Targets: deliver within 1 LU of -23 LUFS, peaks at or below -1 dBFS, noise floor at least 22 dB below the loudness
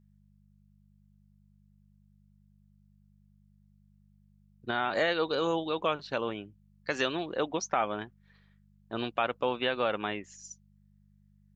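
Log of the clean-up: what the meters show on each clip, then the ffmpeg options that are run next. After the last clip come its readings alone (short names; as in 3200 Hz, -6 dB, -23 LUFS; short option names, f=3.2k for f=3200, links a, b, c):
hum 50 Hz; harmonics up to 200 Hz; hum level -60 dBFS; loudness -31.5 LUFS; peak -11.5 dBFS; loudness target -23.0 LUFS
-> -af "bandreject=f=50:t=h:w=4,bandreject=f=100:t=h:w=4,bandreject=f=150:t=h:w=4,bandreject=f=200:t=h:w=4"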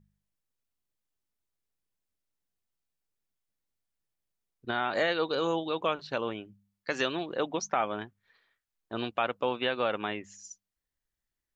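hum none; loudness -31.5 LUFS; peak -11.5 dBFS; loudness target -23.0 LUFS
-> -af "volume=8.5dB"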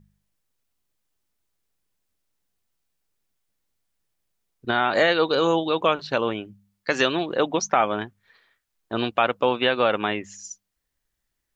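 loudness -23.0 LUFS; peak -3.0 dBFS; noise floor -79 dBFS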